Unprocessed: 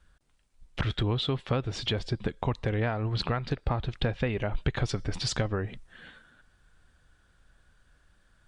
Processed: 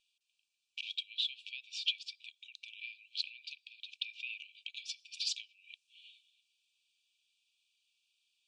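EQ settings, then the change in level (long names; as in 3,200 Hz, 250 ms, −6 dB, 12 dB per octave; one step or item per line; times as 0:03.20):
linear-phase brick-wall high-pass 2,300 Hz
low-pass filter 8,000 Hz
spectral tilt −3.5 dB per octave
+5.5 dB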